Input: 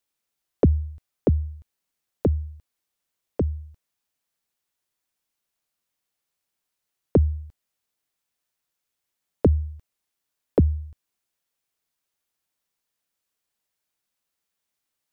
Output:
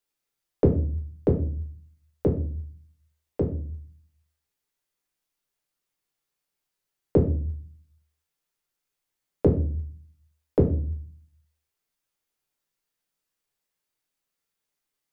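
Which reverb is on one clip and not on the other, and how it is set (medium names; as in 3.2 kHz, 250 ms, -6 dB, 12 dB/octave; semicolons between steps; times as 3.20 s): simulated room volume 40 m³, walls mixed, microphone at 0.52 m; trim -4 dB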